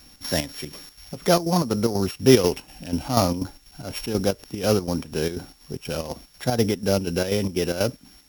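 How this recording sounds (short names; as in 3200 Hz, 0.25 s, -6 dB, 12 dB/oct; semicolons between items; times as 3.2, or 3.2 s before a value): a buzz of ramps at a fixed pitch in blocks of 8 samples; chopped level 4.1 Hz, depth 60%, duty 65%; a quantiser's noise floor 10-bit, dither none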